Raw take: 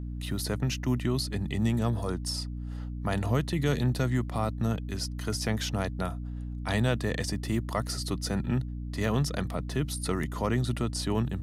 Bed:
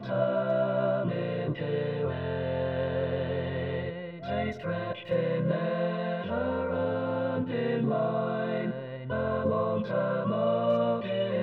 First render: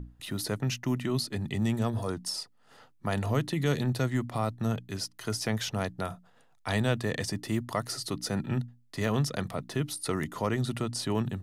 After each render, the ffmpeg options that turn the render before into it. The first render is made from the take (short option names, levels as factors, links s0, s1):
-af "bandreject=f=60:t=h:w=6,bandreject=f=120:t=h:w=6,bandreject=f=180:t=h:w=6,bandreject=f=240:t=h:w=6,bandreject=f=300:t=h:w=6"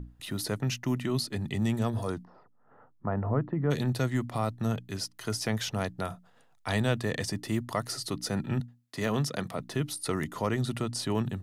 -filter_complex "[0:a]asplit=3[s0][s1][s2];[s0]afade=t=out:st=2.23:d=0.02[s3];[s1]lowpass=f=1400:w=0.5412,lowpass=f=1400:w=1.3066,afade=t=in:st=2.23:d=0.02,afade=t=out:st=3.7:d=0.02[s4];[s2]afade=t=in:st=3.7:d=0.02[s5];[s3][s4][s5]amix=inputs=3:normalize=0,asettb=1/sr,asplit=3[s6][s7][s8];[s6]atrim=end=8.604[s9];[s7]atrim=start=8.6:end=9.6,asetpts=PTS-STARTPTS,afade=t=in:d=0.004:c=qsin,afade=t=out:st=0.996:d=0.004:c=qsin,highpass=120[s10];[s8]atrim=start=9.596[s11];[s9][s10]acrossfade=d=0.004:c1=hsin:c2=qsin[s12];[s12][s11]acrossfade=d=0.004:c1=qsin:c2=hsin"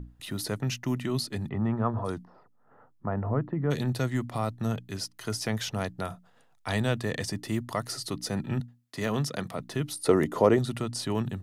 -filter_complex "[0:a]asplit=3[s0][s1][s2];[s0]afade=t=out:st=1.48:d=0.02[s3];[s1]lowpass=f=1200:t=q:w=2.8,afade=t=in:st=1.48:d=0.02,afade=t=out:st=2.04:d=0.02[s4];[s2]afade=t=in:st=2.04:d=0.02[s5];[s3][s4][s5]amix=inputs=3:normalize=0,asettb=1/sr,asplit=3[s6][s7][s8];[s6]atrim=end=8.134[s9];[s7]atrim=start=8.13:end=8.53,asetpts=PTS-STARTPTS,afade=t=in:d=0.004:c=qsin,afade=t=out:st=0.396:d=0.004:c=qsin,bandreject=f=1400:w=10[s10];[s8]atrim=start=8.526[s11];[s9][s10]acrossfade=d=0.004:c1=hsin:c2=qsin[s12];[s12][s11]acrossfade=d=0.004:c1=qsin:c2=hsin,asettb=1/sr,asplit=3[s13][s14][s15];[s13]atrim=end=10.044[s16];[s14]atrim=start=10.04:end=10.59,asetpts=PTS-STARTPTS,afade=t=in:d=0.004:c=qsin,afade=t=out:st=0.546:d=0.004:c=qsin,equalizer=f=460:w=0.67:g=12.5[s17];[s15]atrim=start=10.586[s18];[s16][s17]acrossfade=d=0.004:c1=hsin:c2=qsin[s19];[s19][s18]acrossfade=d=0.004:c1=qsin:c2=hsin"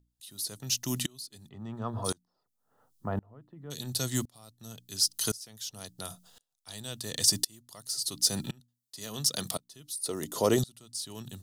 -af "aexciter=amount=4.1:drive=9.7:freq=3200,aeval=exprs='val(0)*pow(10,-30*if(lt(mod(-0.94*n/s,1),2*abs(-0.94)/1000),1-mod(-0.94*n/s,1)/(2*abs(-0.94)/1000),(mod(-0.94*n/s,1)-2*abs(-0.94)/1000)/(1-2*abs(-0.94)/1000))/20)':c=same"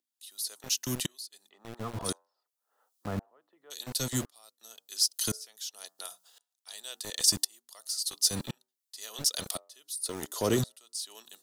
-filter_complex "[0:a]acrossover=split=390|1500[s0][s1][s2];[s0]aeval=exprs='val(0)*gte(abs(val(0)),0.0188)':c=same[s3];[s1]flanger=delay=8.2:depth=3.1:regen=-83:speed=0.25:shape=triangular[s4];[s3][s4][s2]amix=inputs=3:normalize=0"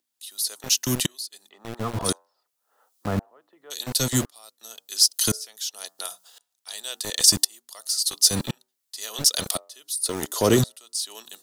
-af "volume=2.66,alimiter=limit=0.794:level=0:latency=1"